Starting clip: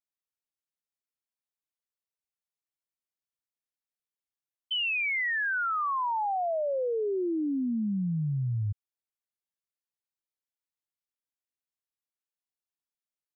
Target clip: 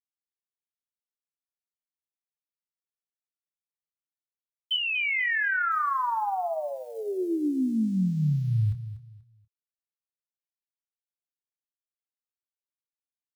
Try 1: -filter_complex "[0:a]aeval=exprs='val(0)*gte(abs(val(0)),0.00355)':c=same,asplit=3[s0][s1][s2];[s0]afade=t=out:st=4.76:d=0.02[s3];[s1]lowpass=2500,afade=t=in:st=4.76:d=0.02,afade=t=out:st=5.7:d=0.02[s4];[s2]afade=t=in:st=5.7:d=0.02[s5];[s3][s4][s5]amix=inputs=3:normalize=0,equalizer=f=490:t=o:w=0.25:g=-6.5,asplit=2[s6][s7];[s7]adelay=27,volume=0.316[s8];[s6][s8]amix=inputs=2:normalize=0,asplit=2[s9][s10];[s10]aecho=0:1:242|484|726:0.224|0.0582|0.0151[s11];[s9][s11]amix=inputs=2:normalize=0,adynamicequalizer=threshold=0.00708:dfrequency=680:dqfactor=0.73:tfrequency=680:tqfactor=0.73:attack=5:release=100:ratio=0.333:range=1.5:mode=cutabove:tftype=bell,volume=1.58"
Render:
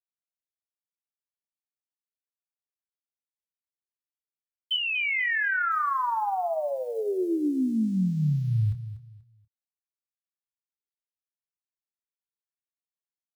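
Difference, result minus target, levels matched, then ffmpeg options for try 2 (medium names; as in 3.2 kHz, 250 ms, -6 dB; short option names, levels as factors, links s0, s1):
500 Hz band +2.5 dB
-filter_complex "[0:a]aeval=exprs='val(0)*gte(abs(val(0)),0.00355)':c=same,asplit=3[s0][s1][s2];[s0]afade=t=out:st=4.76:d=0.02[s3];[s1]lowpass=2500,afade=t=in:st=4.76:d=0.02,afade=t=out:st=5.7:d=0.02[s4];[s2]afade=t=in:st=5.7:d=0.02[s5];[s3][s4][s5]amix=inputs=3:normalize=0,equalizer=f=490:t=o:w=0.25:g=-18.5,asplit=2[s6][s7];[s7]adelay=27,volume=0.316[s8];[s6][s8]amix=inputs=2:normalize=0,asplit=2[s9][s10];[s10]aecho=0:1:242|484|726:0.224|0.0582|0.0151[s11];[s9][s11]amix=inputs=2:normalize=0,adynamicequalizer=threshold=0.00708:dfrequency=680:dqfactor=0.73:tfrequency=680:tqfactor=0.73:attack=5:release=100:ratio=0.333:range=1.5:mode=cutabove:tftype=bell,volume=1.58"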